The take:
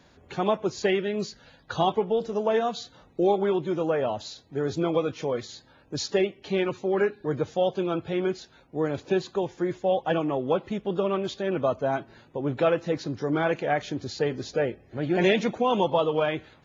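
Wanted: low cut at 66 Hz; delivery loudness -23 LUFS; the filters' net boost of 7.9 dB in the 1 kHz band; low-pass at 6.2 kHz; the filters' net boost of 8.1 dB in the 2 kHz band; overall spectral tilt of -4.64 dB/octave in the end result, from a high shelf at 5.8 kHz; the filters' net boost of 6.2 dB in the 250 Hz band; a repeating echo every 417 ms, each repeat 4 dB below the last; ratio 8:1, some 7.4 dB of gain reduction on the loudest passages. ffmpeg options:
-af "highpass=66,lowpass=6200,equalizer=f=250:t=o:g=8.5,equalizer=f=1000:t=o:g=8.5,equalizer=f=2000:t=o:g=6.5,highshelf=f=5800:g=7,acompressor=threshold=0.112:ratio=8,aecho=1:1:417|834|1251|1668|2085|2502|2919|3336|3753:0.631|0.398|0.25|0.158|0.0994|0.0626|0.0394|0.0249|0.0157,volume=1.12"

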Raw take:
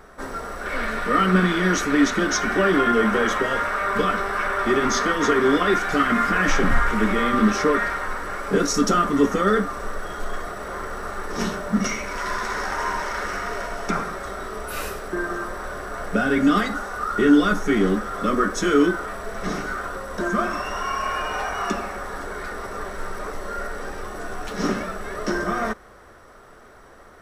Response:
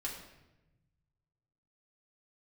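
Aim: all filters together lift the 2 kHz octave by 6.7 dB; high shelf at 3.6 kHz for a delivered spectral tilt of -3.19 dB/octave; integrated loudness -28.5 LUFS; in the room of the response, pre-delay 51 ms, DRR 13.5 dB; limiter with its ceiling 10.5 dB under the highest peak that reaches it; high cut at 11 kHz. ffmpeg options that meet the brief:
-filter_complex "[0:a]lowpass=11000,equalizer=f=2000:t=o:g=7,highshelf=f=3600:g=8,alimiter=limit=0.211:level=0:latency=1,asplit=2[s0][s1];[1:a]atrim=start_sample=2205,adelay=51[s2];[s1][s2]afir=irnorm=-1:irlink=0,volume=0.188[s3];[s0][s3]amix=inputs=2:normalize=0,volume=0.531"

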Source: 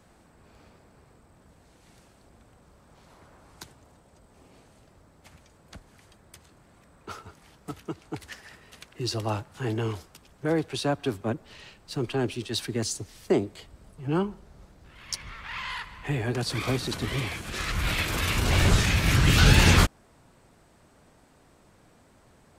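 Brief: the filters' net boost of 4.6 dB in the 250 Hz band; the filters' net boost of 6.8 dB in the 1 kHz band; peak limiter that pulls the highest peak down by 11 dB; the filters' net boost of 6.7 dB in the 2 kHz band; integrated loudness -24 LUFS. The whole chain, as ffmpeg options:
-af "equalizer=f=250:t=o:g=6,equalizer=f=1000:t=o:g=6.5,equalizer=f=2000:t=o:g=6.5,volume=1.33,alimiter=limit=0.282:level=0:latency=1"

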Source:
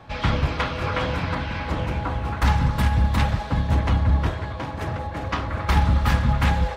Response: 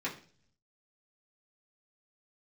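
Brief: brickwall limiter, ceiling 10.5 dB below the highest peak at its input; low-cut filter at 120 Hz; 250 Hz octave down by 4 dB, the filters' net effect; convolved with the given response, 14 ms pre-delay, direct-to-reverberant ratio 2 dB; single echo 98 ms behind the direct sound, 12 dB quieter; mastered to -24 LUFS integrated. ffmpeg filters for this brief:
-filter_complex "[0:a]highpass=120,equalizer=f=250:t=o:g=-5,alimiter=limit=0.0891:level=0:latency=1,aecho=1:1:98:0.251,asplit=2[s0][s1];[1:a]atrim=start_sample=2205,adelay=14[s2];[s1][s2]afir=irnorm=-1:irlink=0,volume=0.473[s3];[s0][s3]amix=inputs=2:normalize=0,volume=1.68"

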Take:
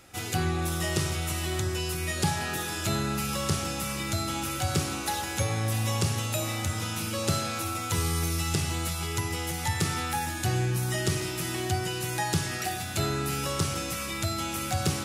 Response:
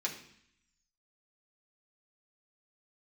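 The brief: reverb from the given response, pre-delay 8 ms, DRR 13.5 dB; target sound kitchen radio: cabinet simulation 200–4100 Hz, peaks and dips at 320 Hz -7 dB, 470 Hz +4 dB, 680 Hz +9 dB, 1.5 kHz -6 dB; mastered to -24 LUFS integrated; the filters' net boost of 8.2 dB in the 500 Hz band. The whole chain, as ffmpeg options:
-filter_complex "[0:a]equalizer=f=500:t=o:g=7,asplit=2[s0][s1];[1:a]atrim=start_sample=2205,adelay=8[s2];[s1][s2]afir=irnorm=-1:irlink=0,volume=0.15[s3];[s0][s3]amix=inputs=2:normalize=0,highpass=200,equalizer=f=320:t=q:w=4:g=-7,equalizer=f=470:t=q:w=4:g=4,equalizer=f=680:t=q:w=4:g=9,equalizer=f=1500:t=q:w=4:g=-6,lowpass=f=4100:w=0.5412,lowpass=f=4100:w=1.3066,volume=1.78"

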